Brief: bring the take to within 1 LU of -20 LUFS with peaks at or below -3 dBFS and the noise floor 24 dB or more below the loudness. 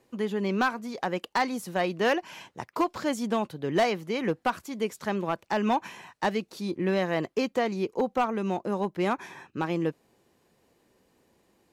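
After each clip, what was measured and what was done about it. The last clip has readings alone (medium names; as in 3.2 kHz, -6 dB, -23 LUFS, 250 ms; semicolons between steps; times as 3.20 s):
clipped samples 0.4%; clipping level -17.5 dBFS; loudness -29.0 LUFS; peak level -17.5 dBFS; loudness target -20.0 LUFS
-> clip repair -17.5 dBFS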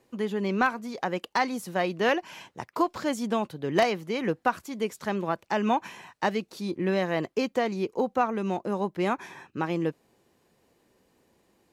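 clipped samples 0.0%; loudness -28.5 LUFS; peak level -8.5 dBFS; loudness target -20.0 LUFS
-> trim +8.5 dB; peak limiter -3 dBFS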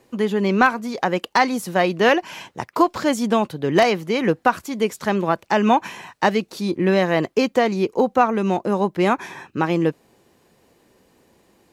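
loudness -20.5 LUFS; peak level -3.0 dBFS; noise floor -60 dBFS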